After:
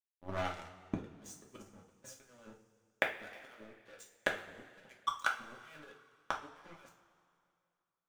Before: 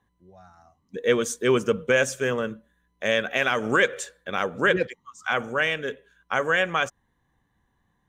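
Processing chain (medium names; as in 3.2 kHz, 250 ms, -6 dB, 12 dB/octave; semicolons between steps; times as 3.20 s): treble shelf 10 kHz -9 dB; waveshaping leveller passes 3; compressor with a negative ratio -21 dBFS, ratio -1; inverted gate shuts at -22 dBFS, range -33 dB; crossover distortion -54.5 dBFS; two-slope reverb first 0.33 s, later 2.4 s, from -18 dB, DRR -0.5 dB; trim +2 dB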